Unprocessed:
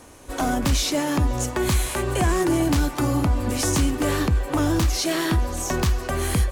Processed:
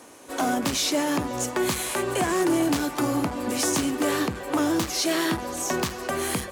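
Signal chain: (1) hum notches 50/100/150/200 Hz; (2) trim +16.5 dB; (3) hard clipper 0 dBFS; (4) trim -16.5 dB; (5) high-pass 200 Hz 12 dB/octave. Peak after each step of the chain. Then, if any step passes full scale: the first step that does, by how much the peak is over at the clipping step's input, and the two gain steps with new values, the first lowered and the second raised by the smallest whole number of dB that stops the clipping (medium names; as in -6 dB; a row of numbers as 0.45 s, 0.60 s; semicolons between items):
-10.5 dBFS, +6.0 dBFS, 0.0 dBFS, -16.5 dBFS, -12.0 dBFS; step 2, 6.0 dB; step 2 +10.5 dB, step 4 -10.5 dB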